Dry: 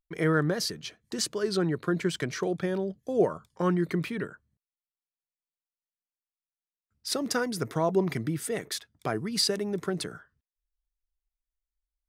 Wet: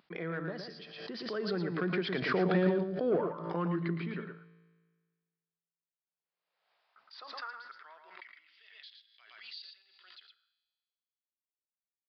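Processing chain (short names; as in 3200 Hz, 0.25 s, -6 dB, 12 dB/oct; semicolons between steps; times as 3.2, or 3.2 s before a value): Doppler pass-by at 2.58, 12 m/s, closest 3.1 m; notches 50/100/150 Hz; in parallel at -1.5 dB: compressor, threshold -43 dBFS, peak gain reduction 16.5 dB; on the sum: overdrive pedal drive 17 dB, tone 2000 Hz, clips at -16 dBFS; high-pass sweep 170 Hz -> 3100 Hz, 5.16–8.67; resonator 56 Hz, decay 1.5 s, harmonics all, mix 50%; on a send: echo 0.114 s -6 dB; on the sum: downsampling 11025 Hz; backwards sustainer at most 53 dB/s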